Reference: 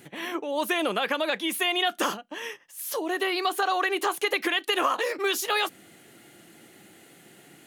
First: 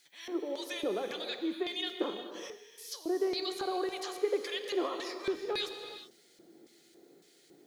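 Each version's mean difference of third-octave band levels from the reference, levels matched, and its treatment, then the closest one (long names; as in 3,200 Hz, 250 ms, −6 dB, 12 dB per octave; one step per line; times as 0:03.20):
7.5 dB: notch filter 2,800 Hz, Q 10
auto-filter band-pass square 1.8 Hz 390–4,900 Hz
background noise violet −77 dBFS
reverb whose tail is shaped and stops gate 440 ms flat, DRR 6 dB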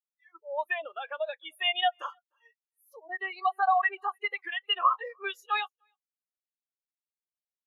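19.0 dB: high-pass filter 620 Hz 12 dB per octave
noise reduction from a noise print of the clip's start 21 dB
single-tap delay 300 ms −17 dB
every bin expanded away from the loudest bin 2.5 to 1
level +1.5 dB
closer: first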